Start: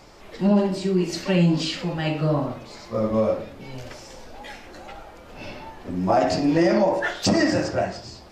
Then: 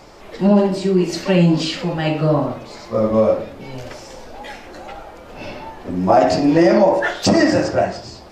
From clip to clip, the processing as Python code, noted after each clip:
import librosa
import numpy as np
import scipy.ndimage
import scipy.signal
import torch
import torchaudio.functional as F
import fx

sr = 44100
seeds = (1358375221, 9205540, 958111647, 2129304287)

y = fx.peak_eq(x, sr, hz=580.0, db=3.5, octaves=2.5)
y = y * librosa.db_to_amplitude(3.5)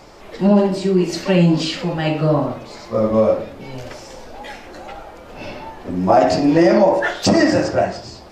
y = x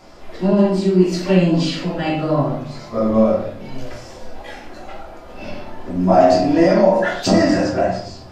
y = fx.room_shoebox(x, sr, seeds[0], volume_m3=380.0, walls='furnished', distance_m=3.0)
y = y * librosa.db_to_amplitude(-6.0)